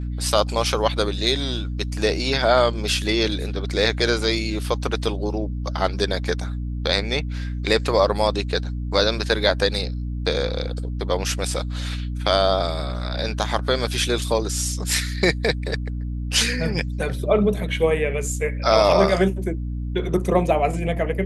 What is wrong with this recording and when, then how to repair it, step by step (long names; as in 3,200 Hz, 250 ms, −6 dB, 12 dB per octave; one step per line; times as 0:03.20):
mains hum 60 Hz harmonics 5 −27 dBFS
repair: hum removal 60 Hz, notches 5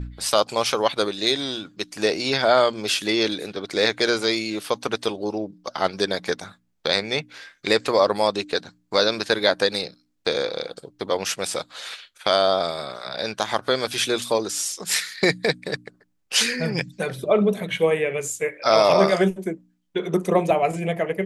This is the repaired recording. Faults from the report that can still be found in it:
none of them is left